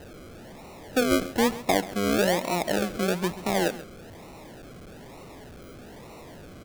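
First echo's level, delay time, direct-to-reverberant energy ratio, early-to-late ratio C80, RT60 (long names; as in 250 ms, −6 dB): −16.5 dB, 134 ms, no reverb audible, no reverb audible, no reverb audible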